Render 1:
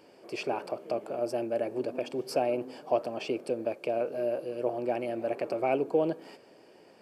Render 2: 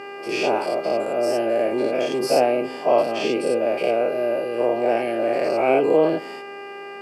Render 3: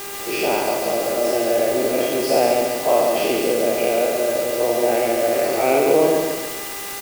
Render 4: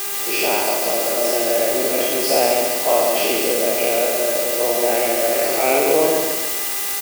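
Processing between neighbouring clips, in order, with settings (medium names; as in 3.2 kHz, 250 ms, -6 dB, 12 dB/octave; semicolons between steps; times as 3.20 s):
every event in the spectrogram widened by 120 ms; mains buzz 400 Hz, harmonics 7, -41 dBFS -4 dB/octave; high-pass 130 Hz; trim +5 dB
added noise white -33 dBFS; feedback delay 141 ms, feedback 47%, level -4 dB
tilt EQ +2 dB/octave; trim +1 dB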